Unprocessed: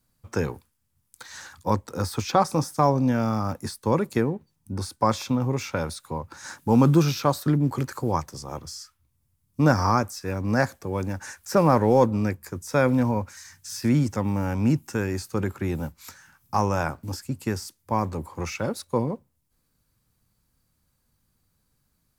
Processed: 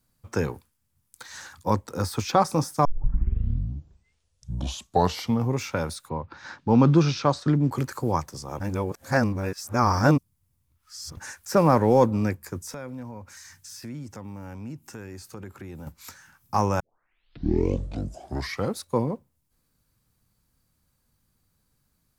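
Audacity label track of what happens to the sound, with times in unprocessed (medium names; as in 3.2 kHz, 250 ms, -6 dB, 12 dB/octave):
2.850000	2.850000	tape start 2.71 s
6.080000	7.700000	low-pass 3.7 kHz -> 7.7 kHz 24 dB/octave
8.600000	11.170000	reverse
12.740000	15.870000	compression 2.5:1, threshold -42 dBFS
16.800000	16.800000	tape start 2.02 s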